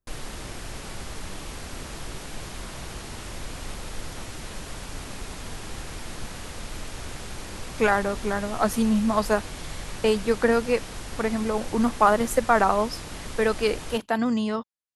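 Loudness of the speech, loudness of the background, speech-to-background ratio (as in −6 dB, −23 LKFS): −24.5 LKFS, −37.5 LKFS, 13.0 dB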